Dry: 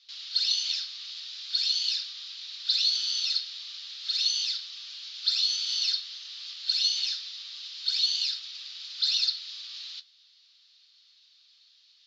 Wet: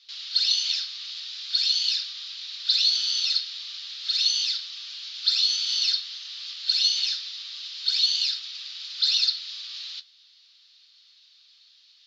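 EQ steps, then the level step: high-pass 1.1 kHz 6 dB/octave; tilt EQ -1.5 dB/octave; +7.0 dB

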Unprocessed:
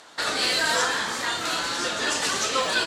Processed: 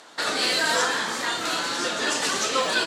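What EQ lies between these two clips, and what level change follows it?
high-pass 170 Hz 12 dB/octave; bass shelf 430 Hz +4 dB; 0.0 dB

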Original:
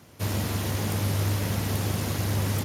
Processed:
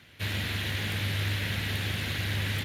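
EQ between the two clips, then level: bass shelf 79 Hz +10 dB; high-order bell 2.5 kHz +14.5 dB; -8.5 dB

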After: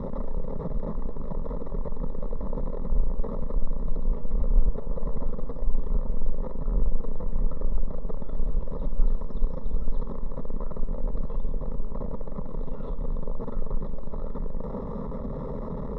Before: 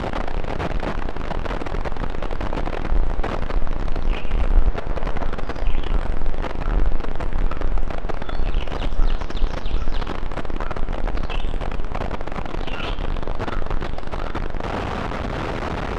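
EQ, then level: boxcar filter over 29 samples; peaking EQ 120 Hz +4.5 dB 0.69 oct; static phaser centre 490 Hz, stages 8; -3.0 dB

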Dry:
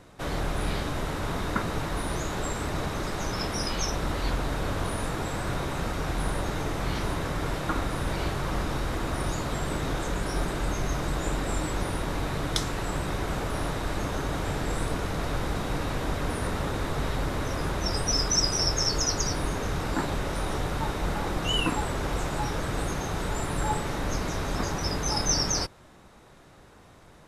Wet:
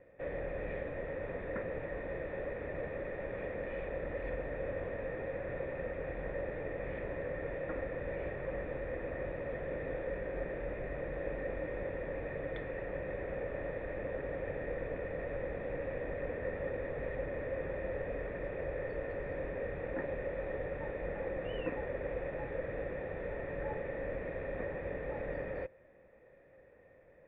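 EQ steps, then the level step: cascade formant filter e; peaking EQ 60 Hz +2 dB 2.1 oct; +4.0 dB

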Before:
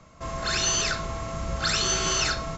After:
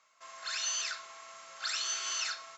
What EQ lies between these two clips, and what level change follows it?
high-pass 1.3 kHz 12 dB/octave; -8.5 dB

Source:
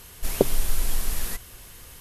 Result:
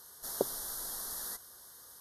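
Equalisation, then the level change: high-pass 820 Hz 6 dB/octave; Butterworth band-stop 2.5 kHz, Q 1.1; band-stop 7.6 kHz, Q 7.9; -5.0 dB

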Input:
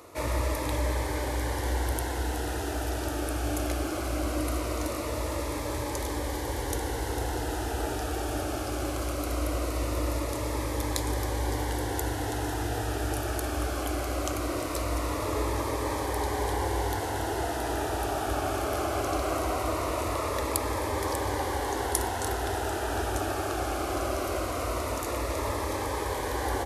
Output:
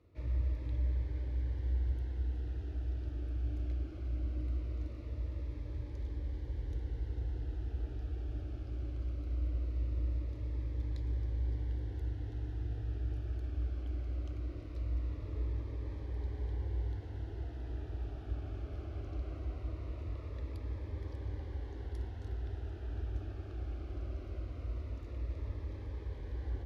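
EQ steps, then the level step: distance through air 280 m; amplifier tone stack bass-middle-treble 10-0-1; +5.0 dB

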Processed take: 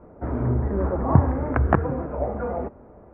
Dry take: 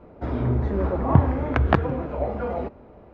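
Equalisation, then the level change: low-pass 1.8 kHz 24 dB/octave; 0.0 dB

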